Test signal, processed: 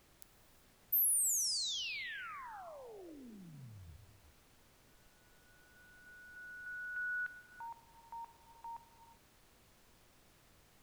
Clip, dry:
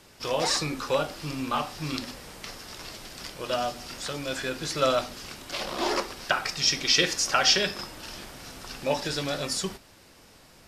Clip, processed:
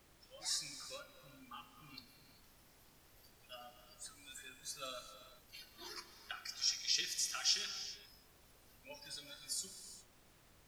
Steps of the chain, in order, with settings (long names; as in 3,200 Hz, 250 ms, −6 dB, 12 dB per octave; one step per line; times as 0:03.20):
first-order pre-emphasis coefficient 0.9
noise reduction from a noise print of the clip's start 21 dB
background noise pink −58 dBFS
reverb whose tail is shaped and stops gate 430 ms flat, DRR 8.5 dB
level −8.5 dB